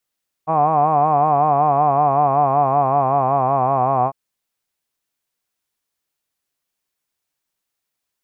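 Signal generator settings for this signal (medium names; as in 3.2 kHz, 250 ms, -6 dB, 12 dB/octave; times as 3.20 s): formant-synthesis vowel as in hod, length 3.65 s, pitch 154 Hz, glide -3 st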